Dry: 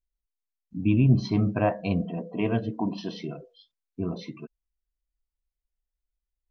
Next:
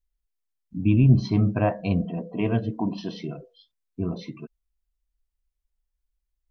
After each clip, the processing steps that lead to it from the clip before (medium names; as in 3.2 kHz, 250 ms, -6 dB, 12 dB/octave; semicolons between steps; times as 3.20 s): bass shelf 130 Hz +7 dB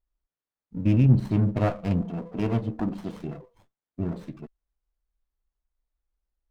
sliding maximum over 17 samples; trim -1.5 dB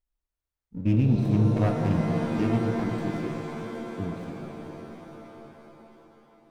pitch-shifted reverb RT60 3.7 s, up +7 st, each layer -2 dB, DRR 4 dB; trim -3 dB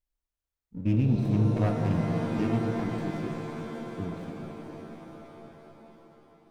echo that smears into a reverb 455 ms, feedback 58%, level -15.5 dB; trim -2.5 dB